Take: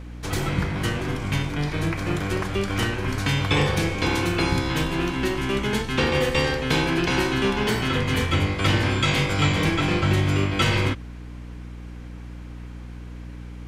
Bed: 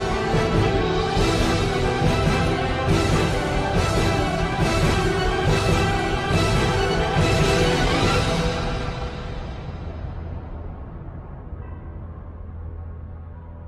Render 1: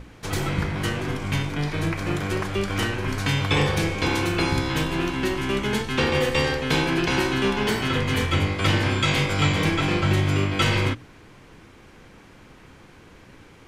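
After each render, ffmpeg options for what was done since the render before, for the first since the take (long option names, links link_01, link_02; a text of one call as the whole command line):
ffmpeg -i in.wav -af "bandreject=frequency=60:width_type=h:width=6,bandreject=frequency=120:width_type=h:width=6,bandreject=frequency=180:width_type=h:width=6,bandreject=frequency=240:width_type=h:width=6,bandreject=frequency=300:width_type=h:width=6" out.wav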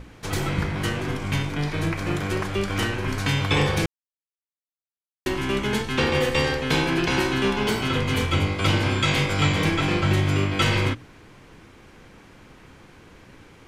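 ffmpeg -i in.wav -filter_complex "[0:a]asettb=1/sr,asplit=3[link_01][link_02][link_03];[link_01]atrim=end=7.564[link_04];[link_02]atrim=start=7.56:end=8.95,asetpts=PTS-STARTPTS,afade=type=in:duration=0.004:curve=qsin,afade=type=out:start_time=1.386:duration=0.004:curve=qsin,bandreject=frequency=1800:width=8.4[link_05];[link_03]atrim=start=8.946[link_06];[link_04][link_05]acrossfade=duration=0.004:curve1=hsin:curve2=qsin[link_07];[link_07][link_06]acrossfade=duration=0.004:curve1=qsin:curve2=hsin,asplit=3[link_08][link_09][link_10];[link_08]atrim=end=3.86,asetpts=PTS-STARTPTS,afade=type=out:start_time=3.856:duration=0.004:curve=hsin[link_11];[link_09]atrim=start=3.86:end=5.26,asetpts=PTS-STARTPTS,volume=0[link_12];[link_10]atrim=start=5.26,asetpts=PTS-STARTPTS,afade=type=in:duration=0.004:curve=hsin[link_13];[link_11][link_12][link_13]concat=n=3:v=0:a=1" out.wav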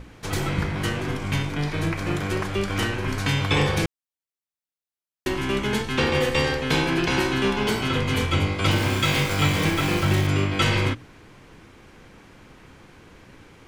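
ffmpeg -i in.wav -filter_complex "[0:a]asettb=1/sr,asplit=3[link_01][link_02][link_03];[link_01]atrim=end=8.714[link_04];[link_02]atrim=start=8.71:end=10.27,asetpts=PTS-STARTPTS,afade=type=in:duration=0.004:curve=qsin,afade=type=out:start_time=1.556:duration=0.004:curve=qsin,aeval=exprs='val(0)*gte(abs(val(0)),0.0398)':channel_layout=same[link_05];[link_03]atrim=start=10.266[link_06];[link_04][link_05]acrossfade=duration=0.004:curve1=hsin:curve2=qsin[link_07];[link_07][link_06]acrossfade=duration=0.004:curve1=qsin:curve2=hsin" out.wav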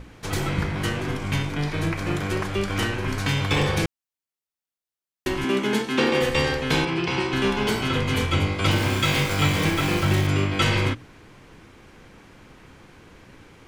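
ffmpeg -i in.wav -filter_complex "[0:a]asettb=1/sr,asplit=3[link_01][link_02][link_03];[link_01]atrim=end=3.044[link_04];[link_02]atrim=start=3.04:end=3.69,asetpts=PTS-STARTPTS,afade=type=in:duration=0.004:curve=qsin,afade=type=out:start_time=0.646:duration=0.004:curve=qsin,aeval=exprs='clip(val(0),-1,0.112)':channel_layout=same[link_05];[link_03]atrim=start=3.686[link_06];[link_04][link_05]acrossfade=duration=0.004:curve1=hsin:curve2=qsin[link_07];[link_07][link_06]acrossfade=duration=0.004:curve1=qsin:curve2=hsin,asettb=1/sr,asplit=3[link_08][link_09][link_10];[link_08]atrim=end=5.444[link_11];[link_09]atrim=start=5.44:end=6.21,asetpts=PTS-STARTPTS,afade=type=in:duration=0.004:curve=qsin,afade=type=out:start_time=0.766:duration=0.004:curve=qsin,highpass=frequency=240:width_type=q:width=1.6[link_12];[link_10]atrim=start=6.206[link_13];[link_11][link_12]acrossfade=duration=0.004:curve1=hsin:curve2=qsin[link_14];[link_14][link_13]acrossfade=duration=0.004:curve1=qsin:curve2=hsin,asettb=1/sr,asplit=3[link_15][link_16][link_17];[link_15]atrim=end=6.854[link_18];[link_16]atrim=start=6.85:end=7.33,asetpts=PTS-STARTPTS,afade=type=in:duration=0.004:curve=qsin,afade=type=out:start_time=0.476:duration=0.004:curve=qsin,highpass=100,equalizer=frequency=260:width_type=q:width=4:gain=-8,equalizer=frequency=620:width_type=q:width=4:gain=-8,equalizer=frequency=1600:width_type=q:width=4:gain=-8,equalizer=frequency=3900:width_type=q:width=4:gain=-5,equalizer=frequency=6600:width_type=q:width=4:gain=-10,lowpass=frequency=7300:width=0.5412,lowpass=frequency=7300:width=1.3066[link_19];[link_17]atrim=start=7.326[link_20];[link_18][link_19]acrossfade=duration=0.004:curve1=hsin:curve2=qsin[link_21];[link_21][link_20]acrossfade=duration=0.004:curve1=qsin:curve2=hsin" out.wav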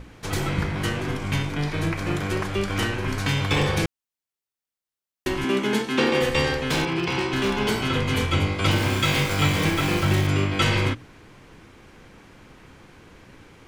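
ffmpeg -i in.wav -filter_complex "[0:a]asettb=1/sr,asplit=3[link_01][link_02][link_03];[link_01]atrim=end=6.694[link_04];[link_02]atrim=start=6.69:end=7.59,asetpts=PTS-STARTPTS,afade=type=in:duration=0.004:curve=qsin,afade=type=out:start_time=0.896:duration=0.004:curve=qsin,aeval=exprs='0.141*(abs(mod(val(0)/0.141+3,4)-2)-1)':channel_layout=same[link_05];[link_03]atrim=start=7.586[link_06];[link_04][link_05]acrossfade=duration=0.004:curve1=hsin:curve2=qsin[link_07];[link_07][link_06]acrossfade=duration=0.004:curve1=qsin:curve2=hsin" out.wav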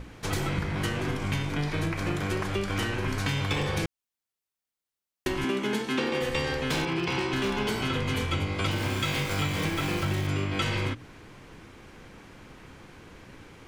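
ffmpeg -i in.wav -af "acompressor=threshold=-25dB:ratio=6" out.wav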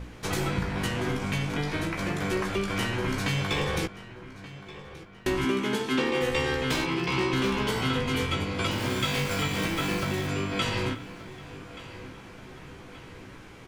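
ffmpeg -i in.wav -filter_complex "[0:a]asplit=2[link_01][link_02];[link_02]adelay=16,volume=-4.5dB[link_03];[link_01][link_03]amix=inputs=2:normalize=0,asplit=2[link_04][link_05];[link_05]adelay=1178,lowpass=frequency=4800:poles=1,volume=-16dB,asplit=2[link_06][link_07];[link_07]adelay=1178,lowpass=frequency=4800:poles=1,volume=0.52,asplit=2[link_08][link_09];[link_09]adelay=1178,lowpass=frequency=4800:poles=1,volume=0.52,asplit=2[link_10][link_11];[link_11]adelay=1178,lowpass=frequency=4800:poles=1,volume=0.52,asplit=2[link_12][link_13];[link_13]adelay=1178,lowpass=frequency=4800:poles=1,volume=0.52[link_14];[link_04][link_06][link_08][link_10][link_12][link_14]amix=inputs=6:normalize=0" out.wav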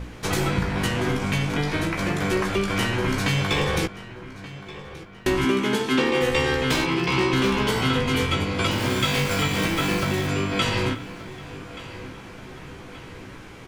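ffmpeg -i in.wav -af "volume=5dB" out.wav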